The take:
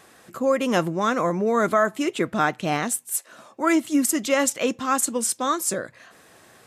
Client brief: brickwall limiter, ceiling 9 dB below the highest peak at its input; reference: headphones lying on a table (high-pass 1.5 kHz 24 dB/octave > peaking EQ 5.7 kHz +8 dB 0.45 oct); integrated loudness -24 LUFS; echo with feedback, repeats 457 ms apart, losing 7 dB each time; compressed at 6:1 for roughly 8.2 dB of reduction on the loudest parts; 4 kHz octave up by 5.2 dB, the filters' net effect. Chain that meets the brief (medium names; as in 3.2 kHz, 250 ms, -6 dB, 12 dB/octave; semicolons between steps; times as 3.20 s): peaking EQ 4 kHz +4 dB; compression 6:1, threshold -24 dBFS; peak limiter -22.5 dBFS; high-pass 1.5 kHz 24 dB/octave; peaking EQ 5.7 kHz +8 dB 0.45 oct; feedback delay 457 ms, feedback 45%, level -7 dB; trim +10.5 dB